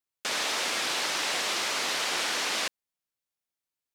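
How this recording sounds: noise floor -90 dBFS; spectral tilt -1.0 dB/octave

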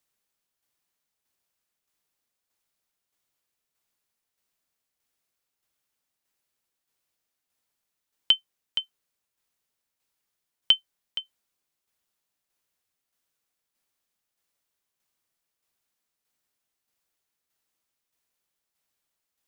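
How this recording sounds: tremolo saw down 1.6 Hz, depth 45%

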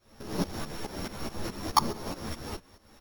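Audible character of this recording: a buzz of ramps at a fixed pitch in blocks of 8 samples; tremolo saw up 4.7 Hz, depth 85%; a shimmering, thickened sound

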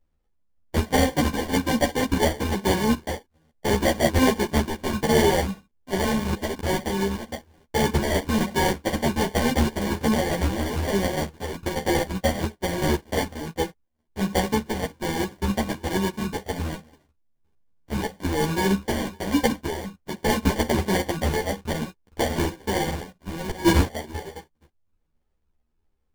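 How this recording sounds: a buzz of ramps at a fixed pitch in blocks of 32 samples; phasing stages 8, 1.2 Hz, lowest notch 340–2100 Hz; aliases and images of a low sample rate 1.3 kHz, jitter 0%; a shimmering, thickened sound

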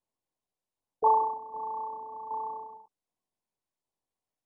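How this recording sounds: tremolo saw down 1.3 Hz, depth 55%; MP2

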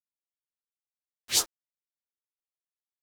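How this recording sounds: phasing stages 2, 3.7 Hz, lowest notch 680–2300 Hz; a quantiser's noise floor 8-bit, dither none; a shimmering, thickened sound

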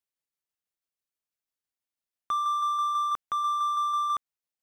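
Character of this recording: tremolo saw down 6.1 Hz, depth 35%

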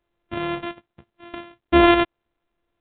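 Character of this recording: a buzz of ramps at a fixed pitch in blocks of 128 samples; random-step tremolo; µ-law

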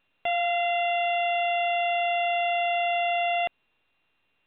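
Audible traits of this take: a buzz of ramps at a fixed pitch in blocks of 16 samples; A-law

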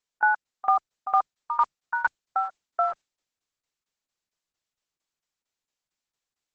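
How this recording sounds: tremolo saw down 4.4 Hz, depth 95%; Opus

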